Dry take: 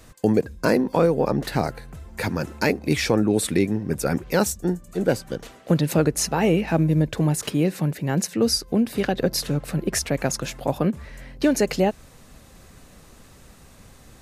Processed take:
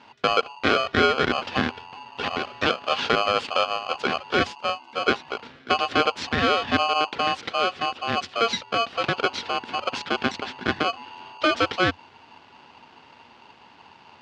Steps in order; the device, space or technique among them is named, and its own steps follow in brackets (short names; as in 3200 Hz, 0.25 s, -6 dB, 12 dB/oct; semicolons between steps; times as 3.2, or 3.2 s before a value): ring modulator pedal into a guitar cabinet (polarity switched at an audio rate 920 Hz; speaker cabinet 81–4100 Hz, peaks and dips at 88 Hz +7 dB, 240 Hz +8 dB, 690 Hz -5 dB, 1100 Hz -5 dB)